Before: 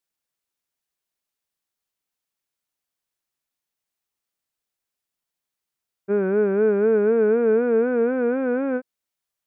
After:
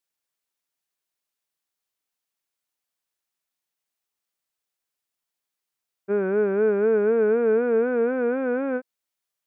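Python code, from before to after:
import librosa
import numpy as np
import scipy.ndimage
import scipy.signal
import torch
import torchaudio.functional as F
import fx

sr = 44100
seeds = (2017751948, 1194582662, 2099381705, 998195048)

y = fx.low_shelf(x, sr, hz=250.0, db=-6.5)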